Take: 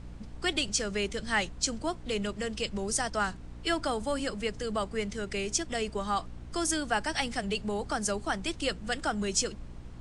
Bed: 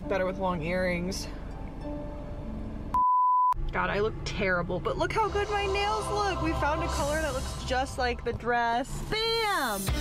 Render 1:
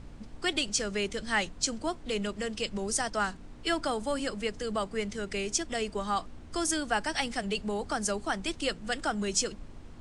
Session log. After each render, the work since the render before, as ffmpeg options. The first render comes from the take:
-af "bandreject=f=60:t=h:w=4,bandreject=f=120:t=h:w=4,bandreject=f=180:t=h:w=4"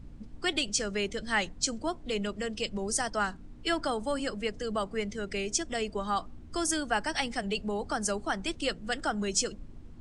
-af "afftdn=nr=9:nf=-47"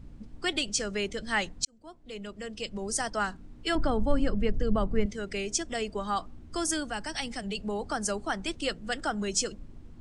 -filter_complex "[0:a]asettb=1/sr,asplit=3[a][b][c];[a]atrim=end=3.754[d];[b]atrim=start=3.75:end=5.06,asetpts=PTS-STARTPTS,afade=t=in:d=0.004:c=qsin,afade=t=out:st=1.306:d=0.004:c=qsin,aemphasis=mode=reproduction:type=riaa[e];[c]atrim=start=5.056[f];[d][e]acrossfade=d=0.004:c1=hsin:c2=qsin[g];[g][f]acrossfade=d=0.004:c1=qsin:c2=hsin,asettb=1/sr,asplit=3[h][i][j];[h]atrim=end=6.904[k];[i]atrim=start=6.9:end=7.6,asetpts=PTS-STARTPTS,afade=t=in:d=0.004:c=qsin,afade=t=out:st=0.696:d=0.004:c=qsin,acrossover=split=250|3000[l][m][n];[m]acompressor=threshold=-44dB:ratio=1.5:attack=3.2:release=140:knee=2.83:detection=peak[o];[l][o][n]amix=inputs=3:normalize=0[p];[j]atrim=start=7.596[q];[k][p]acrossfade=d=0.004:c1=hsin:c2=qsin[r];[r][q]acrossfade=d=0.004:c1=qsin:c2=hsin,asplit=2[s][t];[s]atrim=end=1.65,asetpts=PTS-STARTPTS,afade=t=out:st=1.646:d=0.004:c=hsin[u];[t]atrim=start=1.65,asetpts=PTS-STARTPTS,afade=t=in:d=1.4[v];[u][v]concat=n=2:v=0:a=1"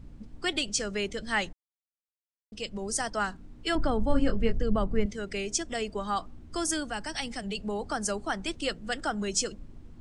-filter_complex "[0:a]asettb=1/sr,asplit=3[a][b][c];[a]atrim=end=4.074[d];[b]atrim=start=4.07:end=4.58,asetpts=PTS-STARTPTS,afade=t=in:d=0.004:c=qsin,afade=t=out:st=0.506:d=0.004:c=qsin,asplit=2[e][f];[f]adelay=22,volume=-5.5dB[g];[e][g]amix=inputs=2:normalize=0,atrim=end_sample=22491[h];[c]atrim=start=4.576[i];[d][h]acrossfade=d=0.004:c1=hsin:c2=qsin[j];[j][i]acrossfade=d=0.004:c1=qsin:c2=hsin,asplit=3[k][l][m];[k]atrim=end=1.53,asetpts=PTS-STARTPTS,afade=t=out:st=1.526:d=0.004:c=hsin[n];[l]atrim=start=1.53:end=2.52,asetpts=PTS-STARTPTS,volume=0[o];[m]atrim=start=2.52,asetpts=PTS-STARTPTS,afade=t=in:d=0.004:c=hsin[p];[n][o][p]concat=n=3:v=0:a=1"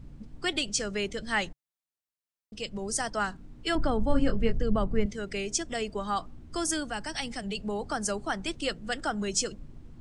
-af "equalizer=f=140:t=o:w=0.25:g=6"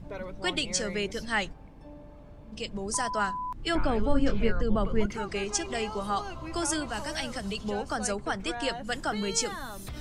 -filter_complex "[1:a]volume=-11dB[a];[0:a][a]amix=inputs=2:normalize=0"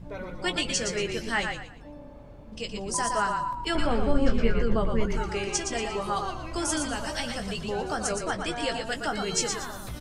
-filter_complex "[0:a]asplit=2[a][b];[b]adelay=17,volume=-8dB[c];[a][c]amix=inputs=2:normalize=0,asplit=2[d][e];[e]asplit=4[f][g][h][i];[f]adelay=117,afreqshift=-33,volume=-5.5dB[j];[g]adelay=234,afreqshift=-66,volume=-15.7dB[k];[h]adelay=351,afreqshift=-99,volume=-25.8dB[l];[i]adelay=468,afreqshift=-132,volume=-36dB[m];[j][k][l][m]amix=inputs=4:normalize=0[n];[d][n]amix=inputs=2:normalize=0"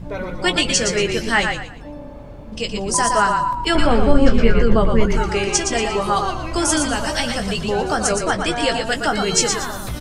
-af "volume=10dB,alimiter=limit=-1dB:level=0:latency=1"

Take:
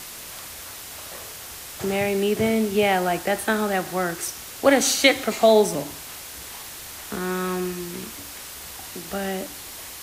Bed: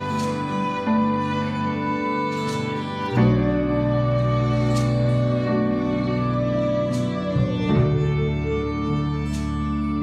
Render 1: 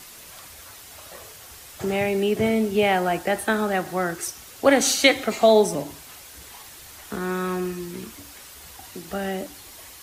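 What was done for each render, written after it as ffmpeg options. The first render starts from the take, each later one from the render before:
-af "afftdn=nr=7:nf=-38"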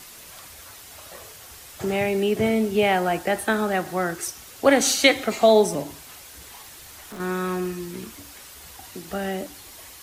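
-filter_complex "[0:a]asettb=1/sr,asplit=3[a][b][c];[a]atrim=end=6.364[d];[b]atrim=start=6.36:end=7.2,asetpts=PTS-STARTPTS,afade=t=in:d=0.004:c=qsin,afade=t=out:st=0.836:d=0.004:c=qsin,asoftclip=type=hard:threshold=-35dB[e];[c]atrim=start=7.196[f];[d][e]acrossfade=d=0.004:c1=hsin:c2=qsin[g];[g][f]acrossfade=d=0.004:c1=qsin:c2=hsin"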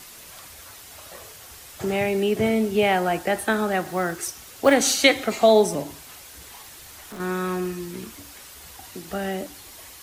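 -filter_complex "[0:a]asettb=1/sr,asplit=3[a][b][c];[a]atrim=end=3.824[d];[b]atrim=start=3.82:end=4.74,asetpts=PTS-STARTPTS,afade=t=in:d=0.004:c=qsin,afade=t=out:st=0.916:d=0.004:c=qsin,acrusher=bits=7:mode=log:mix=0:aa=0.000001[e];[c]atrim=start=4.736[f];[d][e]acrossfade=d=0.004:c1=hsin:c2=qsin[g];[g][f]acrossfade=d=0.004:c1=qsin:c2=hsin"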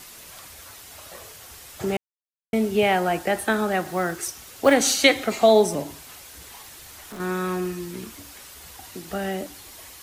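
-filter_complex "[0:a]asplit=3[a][b][c];[a]atrim=end=1.97,asetpts=PTS-STARTPTS,afade=t=out:st=1.966:d=0.004:c=hsin[d];[b]atrim=start=1.97:end=2.53,asetpts=PTS-STARTPTS,volume=0[e];[c]atrim=start=2.53,asetpts=PTS-STARTPTS,afade=t=in:d=0.004:c=hsin[f];[d][e][f]concat=n=3:v=0:a=1"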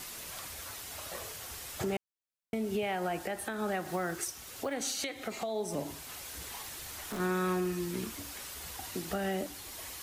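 -af "acompressor=threshold=-23dB:ratio=10,alimiter=limit=-24dB:level=0:latency=1:release=496"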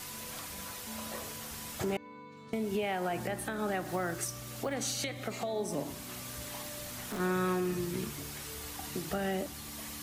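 -filter_complex "[1:a]volume=-26dB[a];[0:a][a]amix=inputs=2:normalize=0"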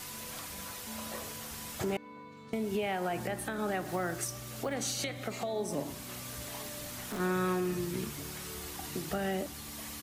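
-filter_complex "[0:a]asplit=2[a][b];[b]adelay=1050,volume=-20dB,highshelf=f=4k:g=-23.6[c];[a][c]amix=inputs=2:normalize=0"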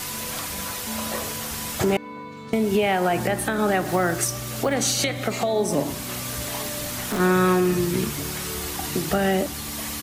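-af "volume=12dB"

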